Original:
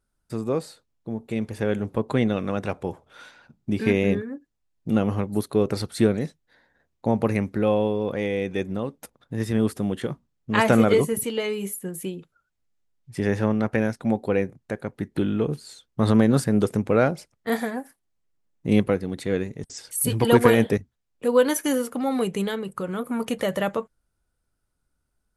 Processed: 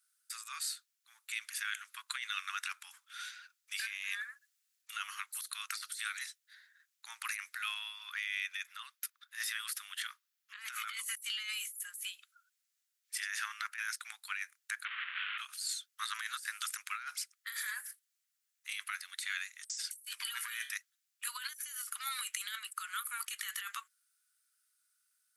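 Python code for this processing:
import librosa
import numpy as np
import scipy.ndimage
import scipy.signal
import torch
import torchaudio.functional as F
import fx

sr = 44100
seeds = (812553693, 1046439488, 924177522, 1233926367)

y = fx.highpass(x, sr, hz=840.0, slope=12, at=(1.32, 2.29))
y = fx.transient(y, sr, attack_db=-4, sustain_db=4, at=(3.78, 4.93))
y = fx.peak_eq(y, sr, hz=8100.0, db=-6.0, octaves=0.84, at=(7.79, 10.97))
y = fx.delta_mod(y, sr, bps=16000, step_db=-27.5, at=(14.85, 15.38))
y = fx.comb_fb(y, sr, f0_hz=150.0, decay_s=0.33, harmonics='all', damping=0.0, mix_pct=60, at=(20.15, 20.73))
y = scipy.signal.sosfilt(scipy.signal.butter(8, 1300.0, 'highpass', fs=sr, output='sos'), y)
y = fx.high_shelf(y, sr, hz=4200.0, db=11.5)
y = fx.over_compress(y, sr, threshold_db=-36.0, ratio=-1.0)
y = y * 10.0 ** (-5.0 / 20.0)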